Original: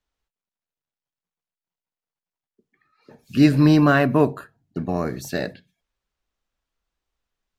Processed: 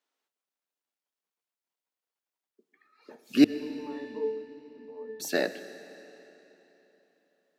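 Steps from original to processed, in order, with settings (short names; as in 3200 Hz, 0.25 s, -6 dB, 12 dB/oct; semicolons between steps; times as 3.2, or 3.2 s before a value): HPF 260 Hz 24 dB/oct; 3.44–5.2 octave resonator A, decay 0.51 s; digital reverb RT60 3.6 s, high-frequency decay 0.9×, pre-delay 50 ms, DRR 12.5 dB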